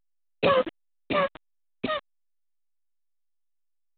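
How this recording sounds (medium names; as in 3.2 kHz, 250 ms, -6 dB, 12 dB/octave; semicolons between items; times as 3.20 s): a quantiser's noise floor 6-bit, dither none; A-law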